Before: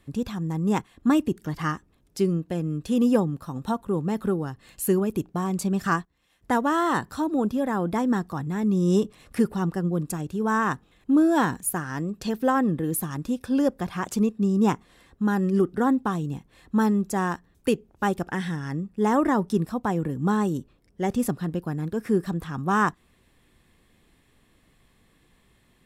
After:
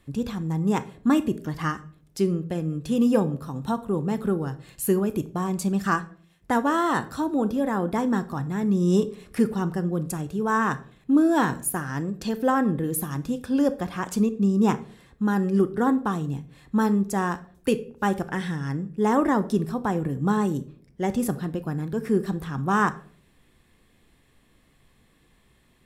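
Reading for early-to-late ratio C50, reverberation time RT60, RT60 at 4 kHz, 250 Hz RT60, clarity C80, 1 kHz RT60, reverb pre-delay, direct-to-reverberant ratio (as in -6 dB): 16.5 dB, 0.50 s, 0.35 s, 0.65 s, 20.5 dB, 0.45 s, 14 ms, 11.5 dB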